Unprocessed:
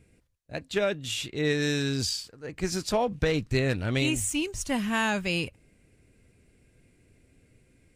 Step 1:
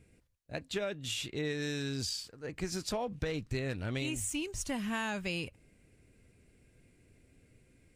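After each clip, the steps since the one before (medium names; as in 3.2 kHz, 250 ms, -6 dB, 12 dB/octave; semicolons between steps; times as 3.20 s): compression 3:1, threshold -31 dBFS, peak gain reduction 8.5 dB; trim -2.5 dB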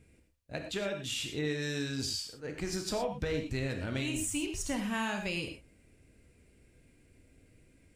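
gated-style reverb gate 140 ms flat, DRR 4 dB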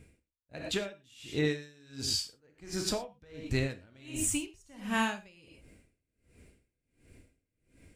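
logarithmic tremolo 1.4 Hz, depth 30 dB; trim +5.5 dB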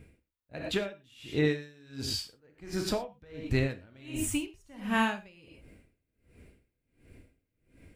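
peaking EQ 7.1 kHz -9 dB 1.4 oct; trim +3 dB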